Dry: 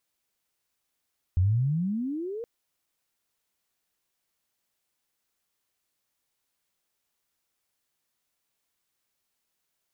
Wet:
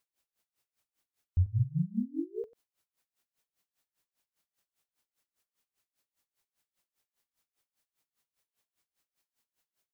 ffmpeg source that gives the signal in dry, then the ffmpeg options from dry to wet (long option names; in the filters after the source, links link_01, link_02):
-f lavfi -i "aevalsrc='pow(10,(-18.5-14*t/1.07)/20)*sin(2*PI*85.4*1.07/(30*log(2)/12)*(exp(30*log(2)/12*t/1.07)-1))':duration=1.07:sample_rate=44100"
-af "aecho=1:1:45|93:0.211|0.708,aeval=exprs='val(0)*pow(10,-24*(0.5-0.5*cos(2*PI*5*n/s))/20)':channel_layout=same"